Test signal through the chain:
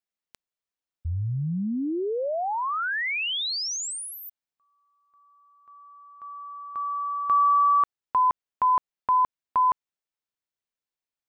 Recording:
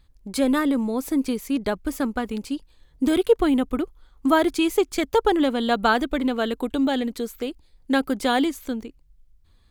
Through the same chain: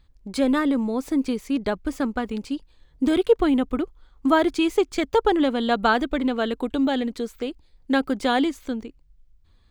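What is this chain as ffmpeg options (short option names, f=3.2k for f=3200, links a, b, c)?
-af "equalizer=f=13k:w=0.83:g=-13.5"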